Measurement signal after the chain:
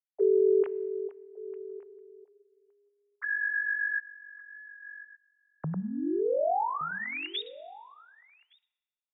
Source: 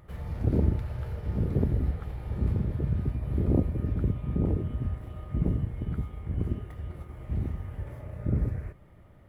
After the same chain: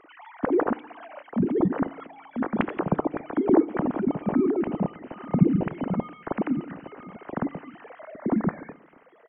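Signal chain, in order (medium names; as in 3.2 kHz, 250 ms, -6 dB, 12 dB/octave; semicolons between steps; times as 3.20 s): formants replaced by sine waves; echo from a far wall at 200 m, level -18 dB; FDN reverb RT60 1.2 s, low-frequency decay 0.95×, high-frequency decay 1×, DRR 19.5 dB; trim +2 dB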